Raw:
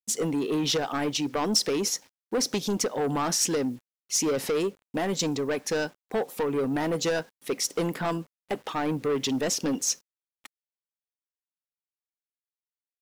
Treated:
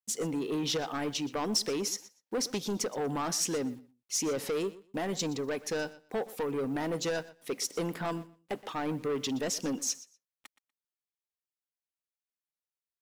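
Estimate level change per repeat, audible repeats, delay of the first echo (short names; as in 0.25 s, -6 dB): -15.5 dB, 2, 0.121 s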